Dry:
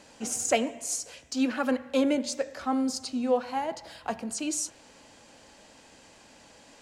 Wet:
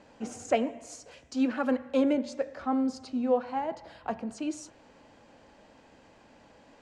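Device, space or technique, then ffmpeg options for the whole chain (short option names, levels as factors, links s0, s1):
through cloth: -filter_complex "[0:a]lowpass=8200,highshelf=f=3100:g=-16,asettb=1/sr,asplit=3[s0][s1][s2];[s0]atrim=end=1.114[s3];[s1]atrim=start=1.11:end=2.13,asetpts=PTS-STARTPTS,afade=t=in:d=0.004:c=qsin,afade=t=out:st=1.016:d=0.004:c=qsin,highshelf=f=6000:g=8[s4];[s2]atrim=start=2.126[s5];[s3][s4]acrossfade=d=0.004:c1=hsin:c2=qsin[s6];[s6][s5]acrossfade=d=0.004:c1=qsin:c2=hsin"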